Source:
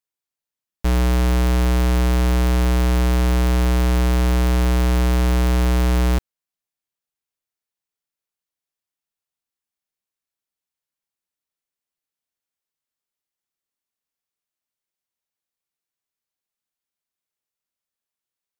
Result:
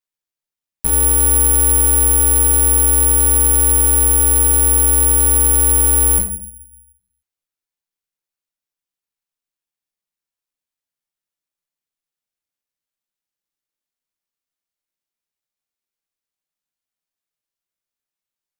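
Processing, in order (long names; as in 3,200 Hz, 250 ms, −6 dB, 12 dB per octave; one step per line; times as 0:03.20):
low-pass filter 9,900 Hz 24 dB per octave
rectangular room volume 73 cubic metres, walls mixed, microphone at 0.66 metres
bad sample-rate conversion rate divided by 4×, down none, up zero stuff
level −5.5 dB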